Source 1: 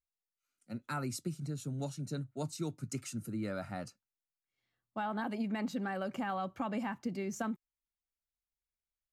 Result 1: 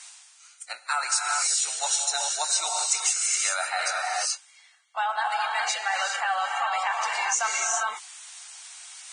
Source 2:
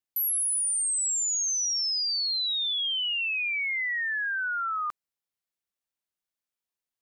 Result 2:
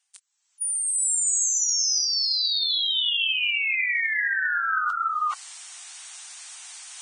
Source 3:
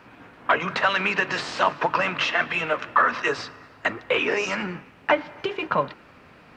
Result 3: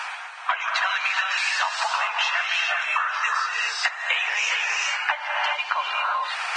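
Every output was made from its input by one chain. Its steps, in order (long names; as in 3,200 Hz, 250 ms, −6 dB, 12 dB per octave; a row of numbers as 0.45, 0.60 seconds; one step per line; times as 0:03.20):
elliptic high-pass filter 760 Hz, stop band 80 dB
reverb whose tail is shaped and stops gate 440 ms rising, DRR 1 dB
reversed playback
upward compression, threshold −28 dBFS
reversed playback
high-shelf EQ 3,400 Hz +8 dB
downward compressor 8 to 1, threshold −31 dBFS
level +9 dB
Ogg Vorbis 16 kbit/s 22,050 Hz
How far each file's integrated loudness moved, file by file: +13.5, +3.5, +1.0 LU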